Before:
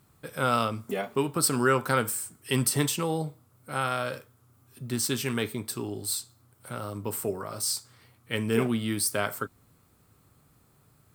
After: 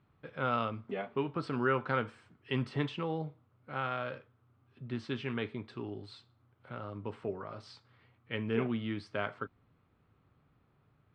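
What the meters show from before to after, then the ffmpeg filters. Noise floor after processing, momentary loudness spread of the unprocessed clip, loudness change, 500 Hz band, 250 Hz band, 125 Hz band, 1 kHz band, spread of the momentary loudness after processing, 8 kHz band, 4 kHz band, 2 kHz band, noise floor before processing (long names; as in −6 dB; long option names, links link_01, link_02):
−71 dBFS, 11 LU, −8.0 dB, −6.5 dB, −6.5 dB, −6.5 dB, −6.5 dB, 14 LU, below −35 dB, −12.5 dB, −6.5 dB, −64 dBFS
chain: -af "lowpass=frequency=3200:width=0.5412,lowpass=frequency=3200:width=1.3066,volume=-6.5dB"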